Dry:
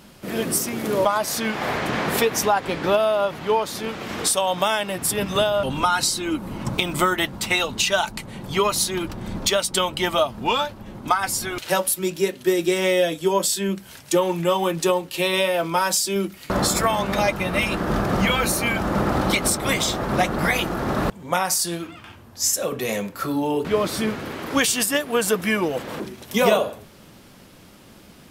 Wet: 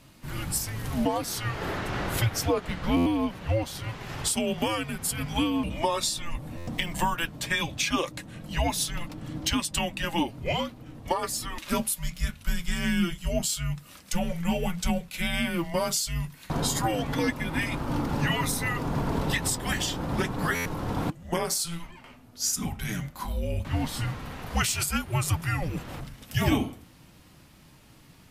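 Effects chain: flange 0.17 Hz, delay 3.1 ms, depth 1.9 ms, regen -65%; frequency shift -340 Hz; stuck buffer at 2.96/6.57/20.55, samples 512, times 8; gain -2 dB

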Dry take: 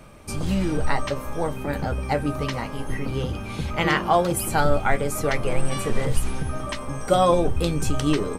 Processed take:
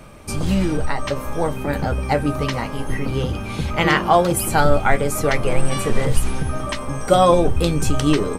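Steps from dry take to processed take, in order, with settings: 0.65–1.28 compressor 4:1, threshold -20 dBFS, peak gain reduction 5.5 dB; gain +4.5 dB

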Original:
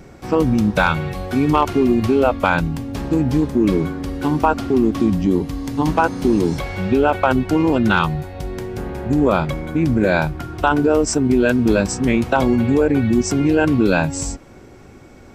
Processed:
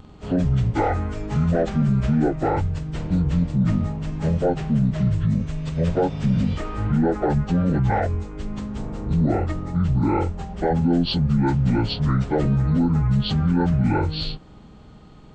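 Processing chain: pitch shift by moving bins -10 st; in parallel at +2 dB: limiter -13.5 dBFS, peak gain reduction 10 dB; on the sum: gain -8 dB

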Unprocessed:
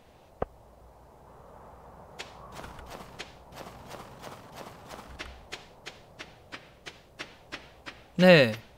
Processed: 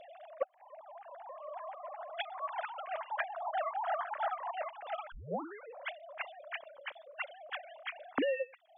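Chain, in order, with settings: sine-wave speech; 5.12 tape start 0.76 s; 6.56–7.57 tilt shelf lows +3.5 dB, about 650 Hz; reverb removal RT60 0.62 s; 3.1–4.51 band shelf 1100 Hz +10.5 dB; compressor 20:1, threshold -42 dBFS, peak gain reduction 30.5 dB; gain +11.5 dB

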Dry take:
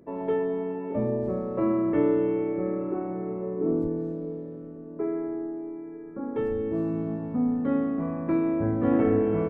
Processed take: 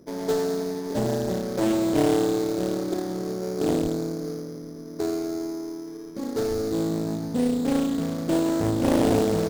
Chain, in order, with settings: median filter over 41 samples; careless resampling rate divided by 8×, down filtered, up hold; Doppler distortion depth 0.78 ms; gain +3 dB

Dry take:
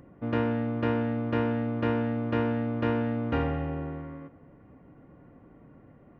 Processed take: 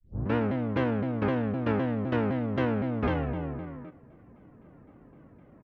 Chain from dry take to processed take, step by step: tape start at the beginning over 0.39 s; tempo 1.1×; shaped vibrato saw down 3.9 Hz, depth 250 cents

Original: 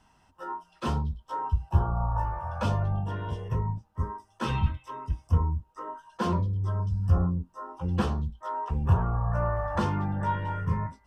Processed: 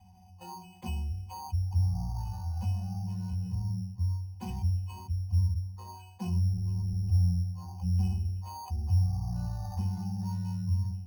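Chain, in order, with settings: 6.42–8.3 octaver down 2 oct, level -2 dB; notches 50/100/150/200 Hz; gate -47 dBFS, range -12 dB; tone controls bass +3 dB, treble +4 dB; fixed phaser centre 1500 Hz, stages 6; octave resonator F#, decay 0.44 s; darkening echo 85 ms, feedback 54%, low-pass 960 Hz, level -22 dB; careless resampling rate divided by 8×, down none, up hold; fast leveller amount 50%; gain +1.5 dB

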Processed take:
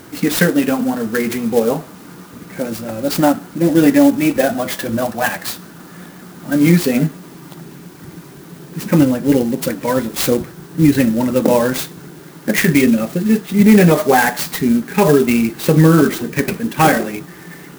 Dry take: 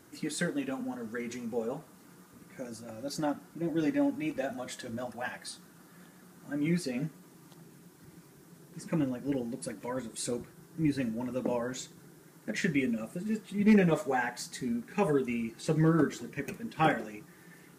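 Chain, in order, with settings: maximiser +20 dB; clock jitter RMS 0.04 ms; gain -1 dB

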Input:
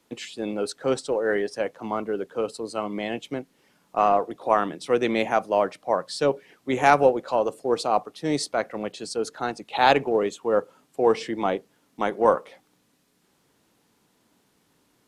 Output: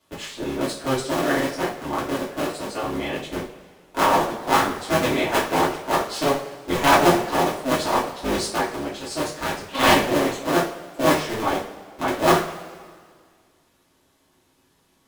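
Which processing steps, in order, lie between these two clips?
cycle switcher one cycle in 3, inverted; vibrato 5 Hz 16 cents; two-slope reverb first 0.37 s, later 1.9 s, from -18 dB, DRR -7 dB; gain -5.5 dB

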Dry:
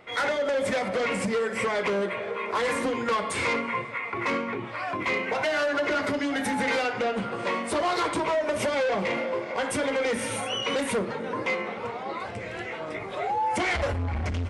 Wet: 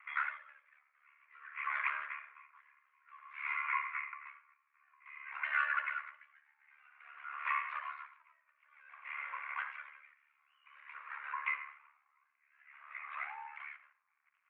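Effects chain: ring modulator 36 Hz; elliptic band-pass 1100–2500 Hz, stop band 80 dB; on a send at -13 dB: reverb RT60 0.40 s, pre-delay 90 ms; on the sum: dB-linear tremolo 0.53 Hz, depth 35 dB; gain +1 dB

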